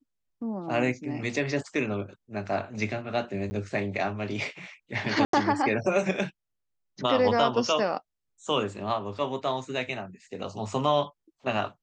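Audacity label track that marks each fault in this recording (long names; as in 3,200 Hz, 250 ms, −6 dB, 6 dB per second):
3.500000	3.510000	drop-out 10 ms
5.250000	5.330000	drop-out 83 ms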